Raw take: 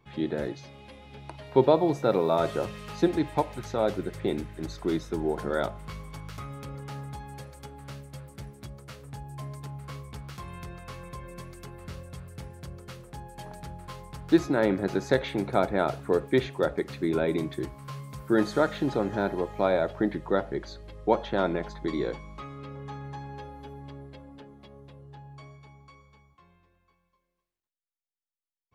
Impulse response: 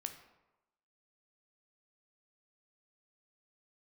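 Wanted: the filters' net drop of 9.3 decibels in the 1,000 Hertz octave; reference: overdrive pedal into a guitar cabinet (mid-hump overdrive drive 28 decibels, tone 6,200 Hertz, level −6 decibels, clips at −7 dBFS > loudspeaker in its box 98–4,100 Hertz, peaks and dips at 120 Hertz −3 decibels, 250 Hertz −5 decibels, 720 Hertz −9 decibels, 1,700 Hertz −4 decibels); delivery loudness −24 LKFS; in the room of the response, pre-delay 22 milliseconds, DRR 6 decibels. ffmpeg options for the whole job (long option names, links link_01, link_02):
-filter_complex "[0:a]equalizer=frequency=1000:width_type=o:gain=-8,asplit=2[link_01][link_02];[1:a]atrim=start_sample=2205,adelay=22[link_03];[link_02][link_03]afir=irnorm=-1:irlink=0,volume=-4dB[link_04];[link_01][link_04]amix=inputs=2:normalize=0,asplit=2[link_05][link_06];[link_06]highpass=frequency=720:poles=1,volume=28dB,asoftclip=type=tanh:threshold=-7dB[link_07];[link_05][link_07]amix=inputs=2:normalize=0,lowpass=frequency=6200:poles=1,volume=-6dB,highpass=98,equalizer=frequency=120:width_type=q:width=4:gain=-3,equalizer=frequency=250:width_type=q:width=4:gain=-5,equalizer=frequency=720:width_type=q:width=4:gain=-9,equalizer=frequency=1700:width_type=q:width=4:gain=-4,lowpass=frequency=4100:width=0.5412,lowpass=frequency=4100:width=1.3066,volume=-2dB"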